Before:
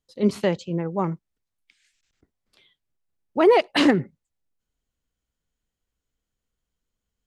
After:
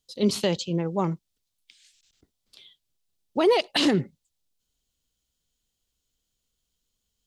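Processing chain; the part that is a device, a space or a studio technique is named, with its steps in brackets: over-bright horn tweeter (resonant high shelf 2600 Hz +8.5 dB, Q 1.5; limiter -12.5 dBFS, peak gain reduction 9.5 dB)

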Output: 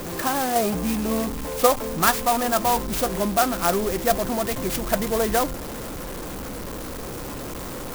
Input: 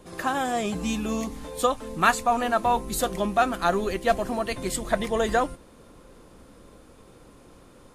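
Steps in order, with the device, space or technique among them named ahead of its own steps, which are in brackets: 0.55–1.89 dynamic EQ 670 Hz, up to +7 dB, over -36 dBFS, Q 1; early CD player with a faulty converter (zero-crossing step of -27.5 dBFS; clock jitter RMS 0.078 ms)

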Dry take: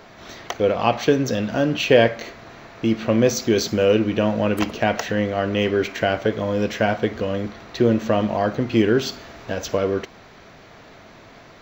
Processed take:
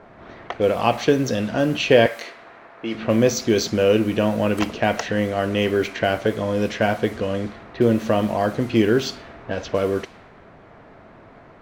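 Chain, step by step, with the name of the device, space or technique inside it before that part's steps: 2.06–2.95 weighting filter A; cassette deck with a dynamic noise filter (white noise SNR 28 dB; low-pass opened by the level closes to 1300 Hz, open at -16.5 dBFS)

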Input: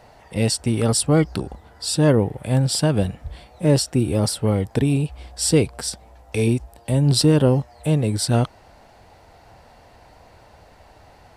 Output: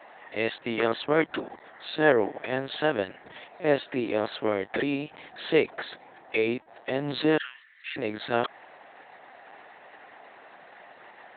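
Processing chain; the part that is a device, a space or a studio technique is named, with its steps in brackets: 7.37–7.98 Chebyshev high-pass 1600 Hz, order 4; talking toy (LPC vocoder at 8 kHz pitch kept; HPF 400 Hz 12 dB/oct; bell 1800 Hz +8.5 dB 0.59 oct)

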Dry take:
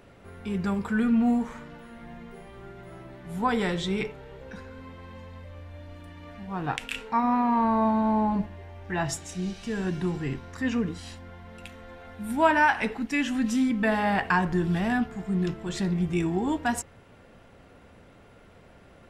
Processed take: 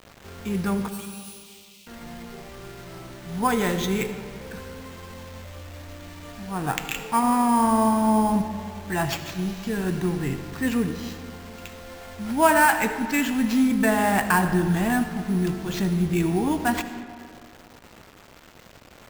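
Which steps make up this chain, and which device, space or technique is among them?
early 8-bit sampler (sample-rate reducer 10000 Hz, jitter 0%; bit-crush 8-bit); 0.88–1.87 steep high-pass 2500 Hz 48 dB/oct; digital reverb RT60 2.1 s, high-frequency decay 0.6×, pre-delay 35 ms, DRR 9.5 dB; gain +3 dB

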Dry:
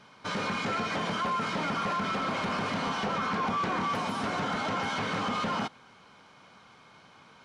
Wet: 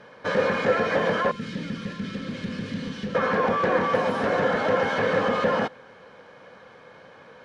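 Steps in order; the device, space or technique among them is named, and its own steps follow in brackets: inside a helmet (high shelf 4100 Hz -10 dB; small resonant body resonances 510/1700 Hz, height 16 dB, ringing for 35 ms); 1.31–3.15 EQ curve 240 Hz 0 dB, 720 Hz -27 dB, 3600 Hz -2 dB; gain +4 dB

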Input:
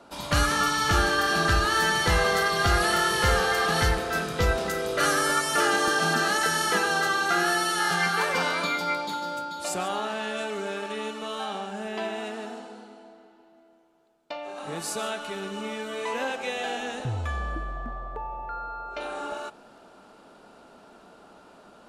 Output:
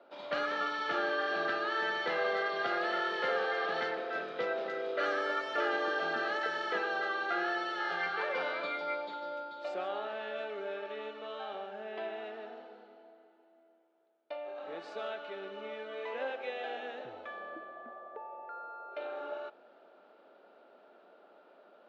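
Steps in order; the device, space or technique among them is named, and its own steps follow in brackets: HPF 180 Hz 12 dB/oct; phone earpiece (speaker cabinet 340–3500 Hz, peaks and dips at 370 Hz +3 dB, 570 Hz +7 dB, 1000 Hz -5 dB, 2800 Hz -3 dB); gain -8.5 dB

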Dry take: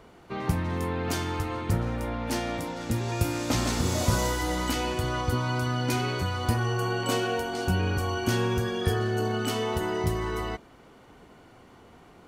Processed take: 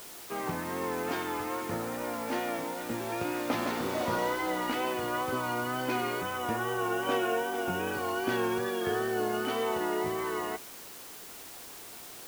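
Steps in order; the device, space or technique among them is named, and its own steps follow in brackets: wax cylinder (BPF 300–2500 Hz; wow and flutter; white noise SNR 14 dB); 6.21–7.93 notch 4400 Hz, Q 6.9

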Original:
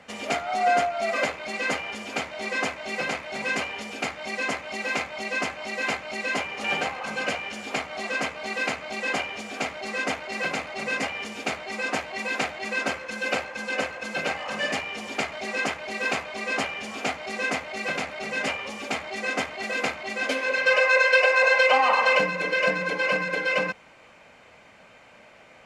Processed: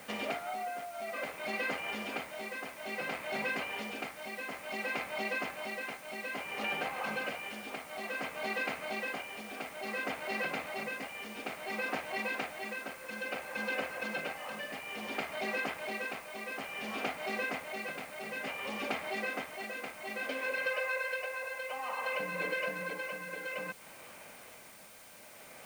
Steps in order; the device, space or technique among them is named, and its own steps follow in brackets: medium wave at night (BPF 110–3800 Hz; compressor, threshold -32 dBFS, peak gain reduction 16.5 dB; tremolo 0.58 Hz, depth 54%; whine 9000 Hz -63 dBFS; white noise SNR 18 dB)

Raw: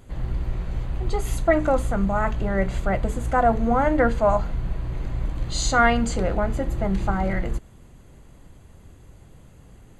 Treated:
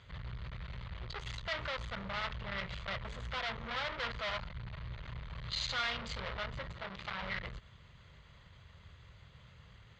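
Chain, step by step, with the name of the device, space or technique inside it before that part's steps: scooped metal amplifier (tube stage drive 31 dB, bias 0.35; speaker cabinet 100–3900 Hz, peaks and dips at 770 Hz -9 dB, 1600 Hz -3 dB, 2600 Hz -5 dB; passive tone stack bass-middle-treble 10-0-10); 6.72–7.22 low shelf 160 Hz -10.5 dB; gain +9 dB

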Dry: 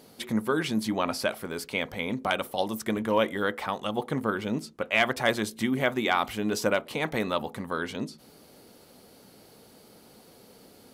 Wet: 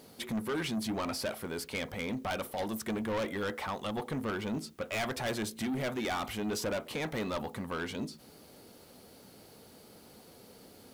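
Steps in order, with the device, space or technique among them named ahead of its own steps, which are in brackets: open-reel tape (soft clip -28 dBFS, distortion -7 dB; bell 79 Hz +4 dB 0.83 oct; white noise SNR 34 dB); gain -1.5 dB

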